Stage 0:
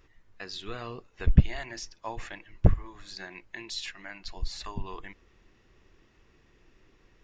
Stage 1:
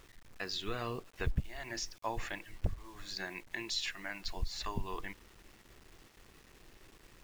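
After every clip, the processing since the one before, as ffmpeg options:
-af "acompressor=threshold=0.0282:ratio=6,acrusher=bits=9:mix=0:aa=0.000001,volume=1.12"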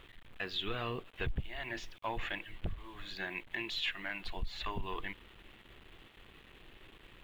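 -af "asoftclip=type=tanh:threshold=0.0335,highshelf=f=4200:t=q:w=3:g=-9,volume=1.19"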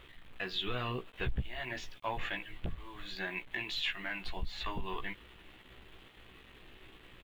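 -filter_complex "[0:a]asplit=2[s0][s1];[s1]adelay=16,volume=0.562[s2];[s0][s2]amix=inputs=2:normalize=0"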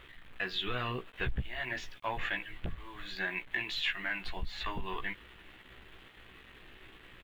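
-af "equalizer=f=1700:w=1.5:g=5"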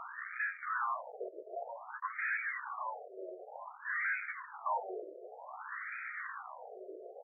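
-filter_complex "[0:a]asplit=2[s0][s1];[s1]highpass=f=720:p=1,volume=56.2,asoftclip=type=tanh:threshold=0.0944[s2];[s0][s2]amix=inputs=2:normalize=0,lowpass=f=1200:p=1,volume=0.501,afftfilt=real='re*between(b*sr/1024,480*pow(1800/480,0.5+0.5*sin(2*PI*0.54*pts/sr))/1.41,480*pow(1800/480,0.5+0.5*sin(2*PI*0.54*pts/sr))*1.41)':imag='im*between(b*sr/1024,480*pow(1800/480,0.5+0.5*sin(2*PI*0.54*pts/sr))/1.41,480*pow(1800/480,0.5+0.5*sin(2*PI*0.54*pts/sr))*1.41)':win_size=1024:overlap=0.75,volume=0.794"

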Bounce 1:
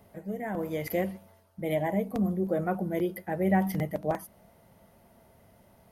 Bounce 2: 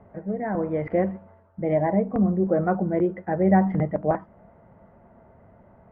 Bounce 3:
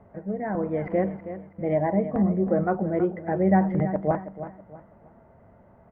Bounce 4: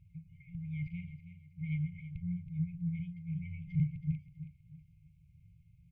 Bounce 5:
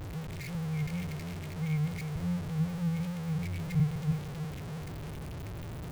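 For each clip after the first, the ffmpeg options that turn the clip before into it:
-af "lowpass=f=1700:w=0.5412,lowpass=f=1700:w=1.3066,volume=2.11"
-af "aecho=1:1:323|646|969:0.251|0.0804|0.0257,volume=0.841"
-af "afftfilt=real='re*(1-between(b*sr/4096,180,2100))':imag='im*(1-between(b*sr/4096,180,2100))':win_size=4096:overlap=0.75,volume=0.794"
-af "aeval=exprs='val(0)+0.5*0.015*sgn(val(0))':c=same,volume=1.26"

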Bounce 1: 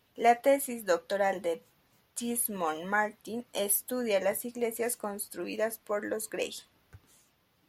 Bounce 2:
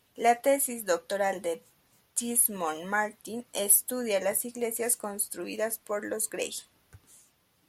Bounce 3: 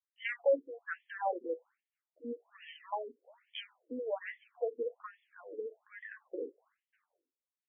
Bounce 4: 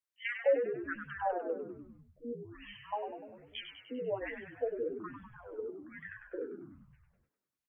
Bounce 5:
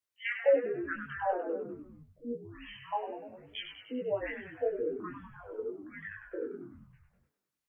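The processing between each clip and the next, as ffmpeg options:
-af "equalizer=f=9100:w=1:g=9.5"
-af "agate=range=0.0224:threshold=0.00282:ratio=3:detection=peak,afftfilt=real='re*between(b*sr/1024,350*pow(2500/350,0.5+0.5*sin(2*PI*1.2*pts/sr))/1.41,350*pow(2500/350,0.5+0.5*sin(2*PI*1.2*pts/sr))*1.41)':imag='im*between(b*sr/1024,350*pow(2500/350,0.5+0.5*sin(2*PI*1.2*pts/sr))/1.41,350*pow(2500/350,0.5+0.5*sin(2*PI*1.2*pts/sr))*1.41)':win_size=1024:overlap=0.75,volume=0.75"
-filter_complex "[0:a]asplit=9[s0][s1][s2][s3][s4][s5][s6][s7][s8];[s1]adelay=99,afreqshift=-68,volume=0.447[s9];[s2]adelay=198,afreqshift=-136,volume=0.272[s10];[s3]adelay=297,afreqshift=-204,volume=0.166[s11];[s4]adelay=396,afreqshift=-272,volume=0.101[s12];[s5]adelay=495,afreqshift=-340,volume=0.0617[s13];[s6]adelay=594,afreqshift=-408,volume=0.0376[s14];[s7]adelay=693,afreqshift=-476,volume=0.0229[s15];[s8]adelay=792,afreqshift=-544,volume=0.014[s16];[s0][s9][s10][s11][s12][s13][s14][s15][s16]amix=inputs=9:normalize=0"
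-af "flanger=delay=19.5:depth=3.5:speed=0.51,volume=1.88"

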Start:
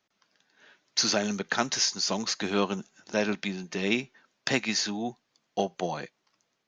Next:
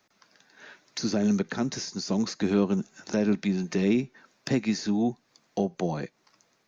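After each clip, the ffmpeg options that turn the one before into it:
-filter_complex "[0:a]equalizer=f=3100:w=3.9:g=-6.5,asplit=2[s0][s1];[s1]alimiter=limit=0.0794:level=0:latency=1:release=71,volume=0.794[s2];[s0][s2]amix=inputs=2:normalize=0,acrossover=split=410[s3][s4];[s4]acompressor=threshold=0.00891:ratio=4[s5];[s3][s5]amix=inputs=2:normalize=0,volume=1.58"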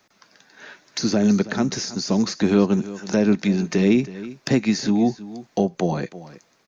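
-af "aecho=1:1:323:0.15,volume=2.11"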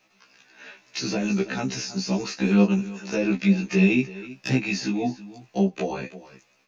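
-af "equalizer=f=2600:t=o:w=0.26:g=13.5,flanger=delay=8.7:depth=4.7:regen=45:speed=1.1:shape=triangular,afftfilt=real='re*1.73*eq(mod(b,3),0)':imag='im*1.73*eq(mod(b,3),0)':win_size=2048:overlap=0.75,volume=1.26"

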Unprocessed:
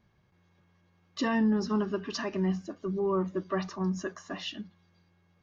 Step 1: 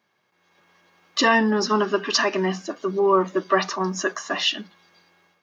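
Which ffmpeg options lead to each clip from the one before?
-af "highpass=270,lowshelf=f=450:g=-9.5,dynaudnorm=f=350:g=3:m=3.35,volume=1.88"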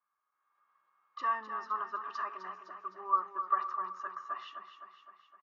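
-af "bandpass=f=1200:t=q:w=9.4:csg=0,aecho=1:1:257|514|771|1028|1285|1542|1799:0.355|0.202|0.115|0.0657|0.0375|0.0213|0.0122,volume=0.668"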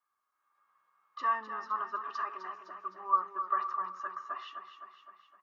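-af "flanger=delay=2.3:depth=2.5:regen=-69:speed=0.43:shape=triangular,volume=1.88"

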